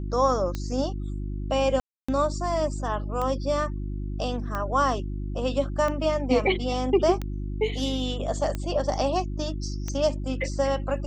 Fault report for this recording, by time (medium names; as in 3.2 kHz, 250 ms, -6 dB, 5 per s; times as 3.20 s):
hum 50 Hz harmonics 7 -31 dBFS
tick 45 rpm -17 dBFS
1.80–2.08 s: dropout 285 ms